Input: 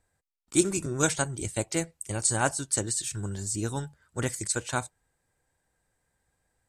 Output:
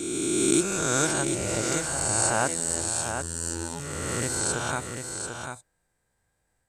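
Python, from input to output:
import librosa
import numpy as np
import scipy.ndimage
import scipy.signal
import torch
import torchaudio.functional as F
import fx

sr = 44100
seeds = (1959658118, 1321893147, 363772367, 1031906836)

p1 = fx.spec_swells(x, sr, rise_s=2.03)
p2 = fx.robotise(p1, sr, hz=83.5, at=(2.48, 3.8))
p3 = p2 + fx.echo_single(p2, sr, ms=743, db=-6.5, dry=0)
p4 = fx.pre_swell(p3, sr, db_per_s=22.0)
y = F.gain(torch.from_numpy(p4), -4.0).numpy()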